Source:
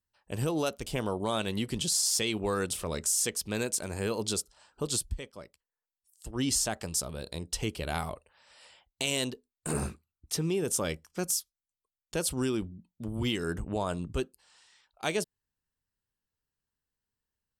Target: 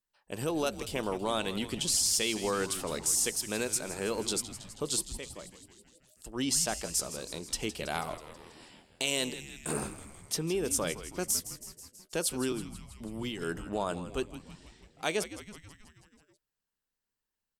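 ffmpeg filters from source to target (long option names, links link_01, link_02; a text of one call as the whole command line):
ffmpeg -i in.wav -filter_complex "[0:a]equalizer=frequency=80:width_type=o:width=1.5:gain=-14.5,asettb=1/sr,asplit=3[link_01][link_02][link_03];[link_01]atrim=end=12.524[link_04];[link_02]atrim=start=12.52:end=13.42,asetpts=PTS-STARTPTS,afade=type=in:duration=0.004:curve=qsin,afade=type=out:start_time=0.896:duration=0.004:curve=qsin,acrossover=split=190[link_05][link_06];[link_06]acompressor=threshold=-36dB:ratio=6[link_07];[link_05][link_07]amix=inputs=2:normalize=0[link_08];[link_03]atrim=start=13.416[link_09];[link_04][link_08]acrossfade=duration=0.004:curve1=hsin:curve2=qsin[link_10];[link_10][link_09]acrossfade=duration=0.004:curve1=qsin:curve2=hsin,asplit=8[link_11][link_12][link_13][link_14][link_15][link_16][link_17][link_18];[link_12]adelay=162,afreqshift=-110,volume=-13dB[link_19];[link_13]adelay=324,afreqshift=-220,volume=-16.9dB[link_20];[link_14]adelay=486,afreqshift=-330,volume=-20.8dB[link_21];[link_15]adelay=648,afreqshift=-440,volume=-24.6dB[link_22];[link_16]adelay=810,afreqshift=-550,volume=-28.5dB[link_23];[link_17]adelay=972,afreqshift=-660,volume=-32.4dB[link_24];[link_18]adelay=1134,afreqshift=-770,volume=-36.3dB[link_25];[link_11][link_19][link_20][link_21][link_22][link_23][link_24][link_25]amix=inputs=8:normalize=0" out.wav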